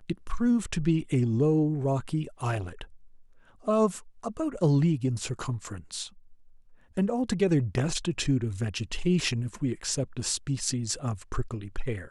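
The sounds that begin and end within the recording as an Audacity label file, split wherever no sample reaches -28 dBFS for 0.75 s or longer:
3.680000	6.030000	sound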